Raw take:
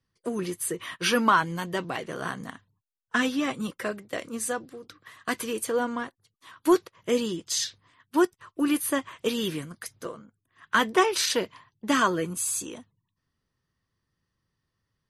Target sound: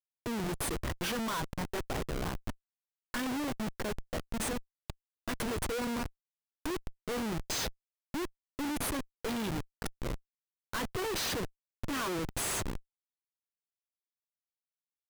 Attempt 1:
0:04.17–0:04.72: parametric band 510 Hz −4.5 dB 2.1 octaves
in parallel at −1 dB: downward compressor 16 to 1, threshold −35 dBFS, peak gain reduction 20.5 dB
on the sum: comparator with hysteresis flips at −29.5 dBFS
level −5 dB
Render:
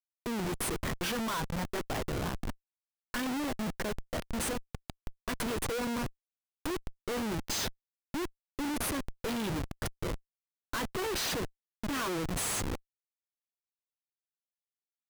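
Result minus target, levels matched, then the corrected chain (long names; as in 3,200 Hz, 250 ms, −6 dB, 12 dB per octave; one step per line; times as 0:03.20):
downward compressor: peak gain reduction −6.5 dB
0:04.17–0:04.72: parametric band 510 Hz −4.5 dB 2.1 octaves
in parallel at −1 dB: downward compressor 16 to 1, threshold −42 dBFS, peak gain reduction 27.5 dB
on the sum: comparator with hysteresis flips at −29.5 dBFS
level −5 dB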